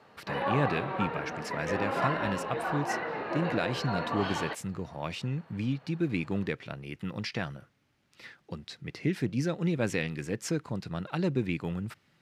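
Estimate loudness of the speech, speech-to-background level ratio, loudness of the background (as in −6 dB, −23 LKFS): −33.5 LKFS, 0.0 dB, −33.5 LKFS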